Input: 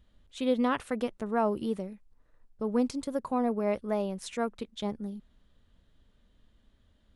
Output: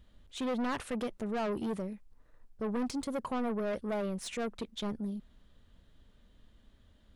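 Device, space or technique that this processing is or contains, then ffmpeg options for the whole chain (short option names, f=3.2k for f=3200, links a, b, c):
saturation between pre-emphasis and de-emphasis: -af "highshelf=f=6.2k:g=10,asoftclip=type=tanh:threshold=-33dB,highshelf=f=6.2k:g=-10,volume=3dB"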